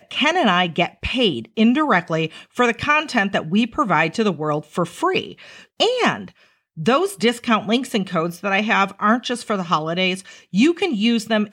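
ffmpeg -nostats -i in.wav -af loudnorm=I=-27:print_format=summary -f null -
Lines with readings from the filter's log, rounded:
Input Integrated:    -19.4 LUFS
Input True Peak:      -4.3 dBTP
Input LRA:             1.9 LU
Input Threshold:     -29.7 LUFS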